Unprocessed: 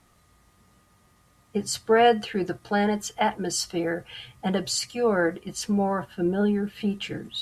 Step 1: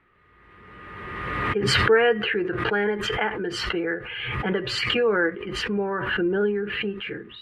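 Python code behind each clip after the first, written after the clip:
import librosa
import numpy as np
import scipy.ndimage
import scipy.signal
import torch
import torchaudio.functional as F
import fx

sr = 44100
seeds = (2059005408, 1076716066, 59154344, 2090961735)

y = fx.curve_eq(x, sr, hz=(250.0, 410.0, 690.0, 1000.0, 1700.0, 2700.0, 6300.0), db=(0, 11, -4, 5, 12, 7, -26))
y = fx.pre_swell(y, sr, db_per_s=28.0)
y = y * librosa.db_to_amplitude(-6.5)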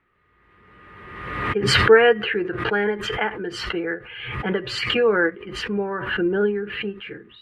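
y = fx.upward_expand(x, sr, threshold_db=-36.0, expansion=1.5)
y = y * librosa.db_to_amplitude(6.0)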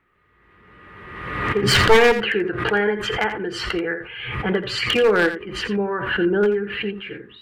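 y = np.minimum(x, 2.0 * 10.0 ** (-13.5 / 20.0) - x)
y = y + 10.0 ** (-11.0 / 20.0) * np.pad(y, (int(85 * sr / 1000.0), 0))[:len(y)]
y = y * librosa.db_to_amplitude(2.0)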